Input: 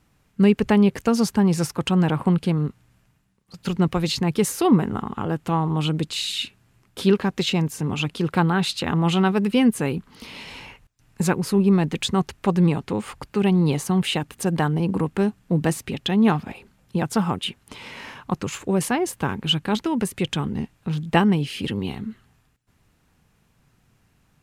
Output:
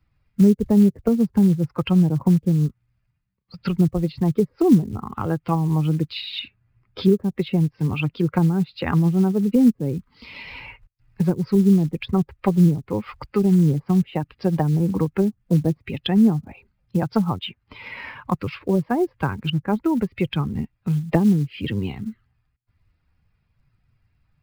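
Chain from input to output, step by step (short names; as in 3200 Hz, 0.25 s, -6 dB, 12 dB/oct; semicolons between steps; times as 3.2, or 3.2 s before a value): per-bin expansion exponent 1.5; treble ducked by the level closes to 410 Hz, closed at -20.5 dBFS; downsampling 11025 Hz; short-mantissa float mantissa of 4-bit; three-band squash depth 40%; gain +6 dB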